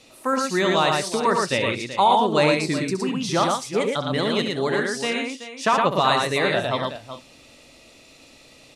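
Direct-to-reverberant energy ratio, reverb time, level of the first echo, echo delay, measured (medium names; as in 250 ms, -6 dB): no reverb, no reverb, -8.5 dB, 68 ms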